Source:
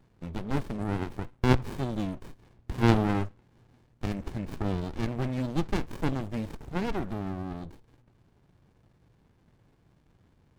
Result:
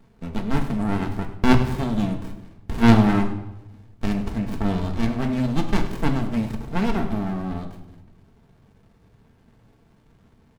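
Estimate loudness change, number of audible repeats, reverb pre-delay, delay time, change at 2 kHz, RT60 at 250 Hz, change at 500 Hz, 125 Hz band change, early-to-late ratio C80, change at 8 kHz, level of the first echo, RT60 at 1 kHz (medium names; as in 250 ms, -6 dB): +7.5 dB, 1, 4 ms, 100 ms, +7.5 dB, 1.1 s, +4.5 dB, +6.0 dB, 11.0 dB, no reading, -14.0 dB, 0.85 s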